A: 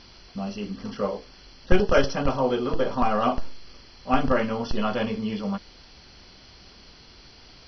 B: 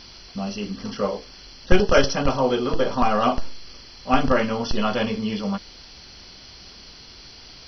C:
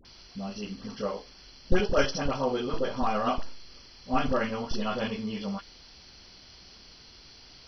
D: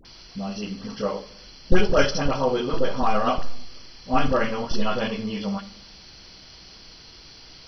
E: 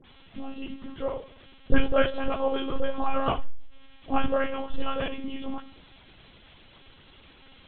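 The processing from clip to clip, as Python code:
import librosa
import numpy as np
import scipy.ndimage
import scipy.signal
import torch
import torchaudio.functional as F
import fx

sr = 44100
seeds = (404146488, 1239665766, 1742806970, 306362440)

y1 = fx.high_shelf(x, sr, hz=4200.0, db=9.5)
y1 = y1 * 10.0 ** (2.5 / 20.0)
y2 = fx.dispersion(y1, sr, late='highs', ms=51.0, hz=850.0)
y2 = y2 * 10.0 ** (-7.5 / 20.0)
y3 = fx.room_shoebox(y2, sr, seeds[0], volume_m3=1900.0, walls='furnished', distance_m=0.62)
y3 = y3 * 10.0 ** (5.0 / 20.0)
y4 = fx.lpc_monotone(y3, sr, seeds[1], pitch_hz=270.0, order=16)
y4 = y4 * 10.0 ** (-3.5 / 20.0)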